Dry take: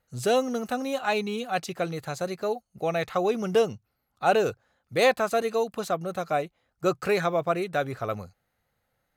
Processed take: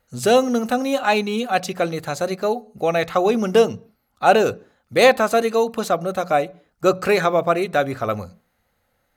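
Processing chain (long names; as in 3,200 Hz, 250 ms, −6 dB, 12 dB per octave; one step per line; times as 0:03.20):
mains-hum notches 60/120/180 Hz
on a send: convolution reverb RT60 0.45 s, pre-delay 3 ms, DRR 18 dB
on the sum: level +7.5 dB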